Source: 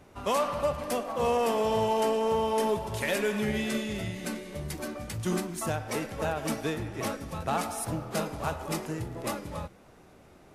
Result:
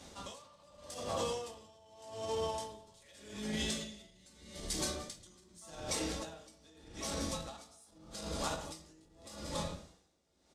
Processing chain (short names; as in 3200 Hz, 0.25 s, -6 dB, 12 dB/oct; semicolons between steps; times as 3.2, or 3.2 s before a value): octaver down 2 oct, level +3 dB; shoebox room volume 220 m³, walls furnished, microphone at 2.3 m; in parallel at -10 dB: soft clip -19.5 dBFS, distortion -12 dB; on the sum: limiter -17 dBFS, peak gain reduction 10 dB; HPF 100 Hz 6 dB/oct; band shelf 5400 Hz +13.5 dB; hard clip -13 dBFS, distortion -42 dB; low shelf 230 Hz -4.5 dB; speakerphone echo 0.11 s, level -11 dB; compressor, threshold -27 dBFS, peak gain reduction 8.5 dB; dB-linear tremolo 0.83 Hz, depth 27 dB; gain -4.5 dB